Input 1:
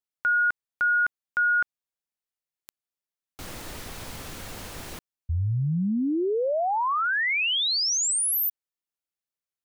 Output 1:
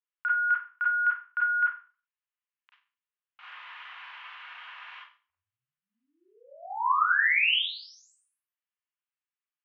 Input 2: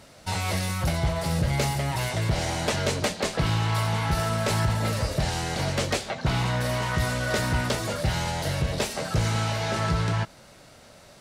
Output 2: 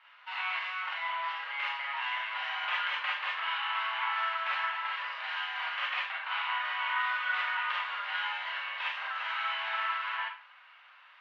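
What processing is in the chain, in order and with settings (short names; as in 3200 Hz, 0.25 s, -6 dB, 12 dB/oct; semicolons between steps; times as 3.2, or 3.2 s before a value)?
elliptic band-pass 1000–3000 Hz, stop band 70 dB; Schroeder reverb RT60 0.38 s, combs from 31 ms, DRR -4.5 dB; gain -4 dB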